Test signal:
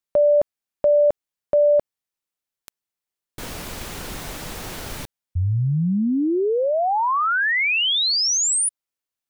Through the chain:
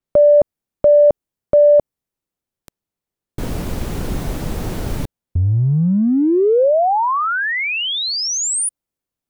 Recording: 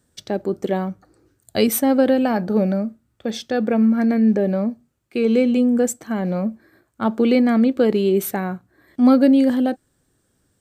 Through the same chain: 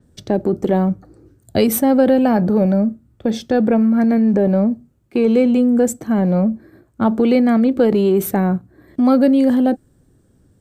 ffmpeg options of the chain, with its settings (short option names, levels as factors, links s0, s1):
-filter_complex "[0:a]tiltshelf=f=670:g=8,acrossover=split=600|3600[s0][s1][s2];[s0]acompressor=threshold=0.1:ratio=6:attack=1.3:release=40:knee=1:detection=peak[s3];[s3][s1][s2]amix=inputs=3:normalize=0,adynamicequalizer=threshold=0.00562:dfrequency=7000:dqfactor=0.7:tfrequency=7000:tqfactor=0.7:attack=5:release=100:ratio=0.375:range=2:mode=boostabove:tftype=highshelf,volume=2"